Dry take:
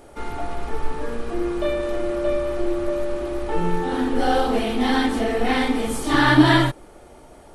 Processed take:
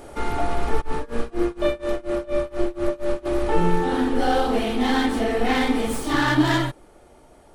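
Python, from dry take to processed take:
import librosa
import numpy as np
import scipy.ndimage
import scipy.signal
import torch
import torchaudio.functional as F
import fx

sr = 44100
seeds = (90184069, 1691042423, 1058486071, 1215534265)

y = fx.tracing_dist(x, sr, depth_ms=0.055)
y = fx.rider(y, sr, range_db=5, speed_s=0.5)
y = fx.tremolo(y, sr, hz=4.2, depth=0.95, at=(0.8, 3.25), fade=0.02)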